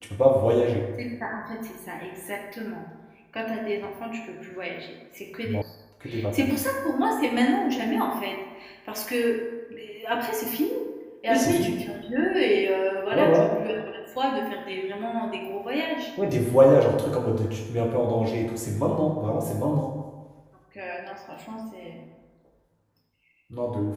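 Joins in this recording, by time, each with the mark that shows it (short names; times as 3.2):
5.62 sound cut off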